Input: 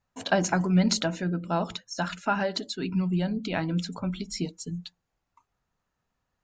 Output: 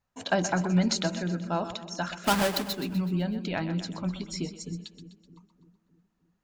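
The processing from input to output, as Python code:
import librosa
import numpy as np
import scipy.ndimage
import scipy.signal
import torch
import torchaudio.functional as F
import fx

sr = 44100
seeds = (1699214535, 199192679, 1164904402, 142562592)

y = fx.halfwave_hold(x, sr, at=(2.24, 2.73))
y = fx.echo_split(y, sr, split_hz=400.0, low_ms=306, high_ms=126, feedback_pct=52, wet_db=-11.5)
y = y * librosa.db_to_amplitude(-2.0)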